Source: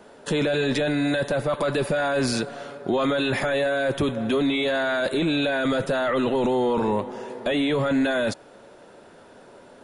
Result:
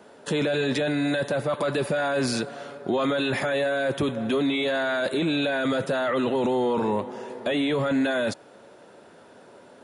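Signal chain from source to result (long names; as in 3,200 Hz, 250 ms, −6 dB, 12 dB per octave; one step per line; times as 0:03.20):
high-pass filter 87 Hz
level −1.5 dB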